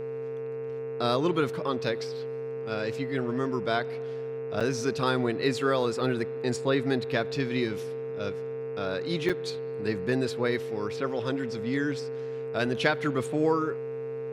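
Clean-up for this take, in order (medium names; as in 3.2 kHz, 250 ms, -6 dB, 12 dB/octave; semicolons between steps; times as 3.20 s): de-hum 131.6 Hz, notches 21; band-stop 450 Hz, Q 30; interpolate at 4.60/9.29 s, 6.2 ms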